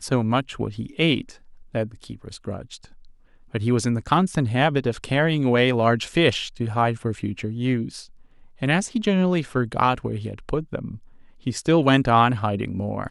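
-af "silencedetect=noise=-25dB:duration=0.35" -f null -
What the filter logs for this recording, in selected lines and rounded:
silence_start: 1.21
silence_end: 1.75 | silence_duration: 0.54
silence_start: 2.74
silence_end: 3.55 | silence_duration: 0.81
silence_start: 8.00
silence_end: 8.62 | silence_duration: 0.63
silence_start: 10.91
silence_end: 11.47 | silence_duration: 0.56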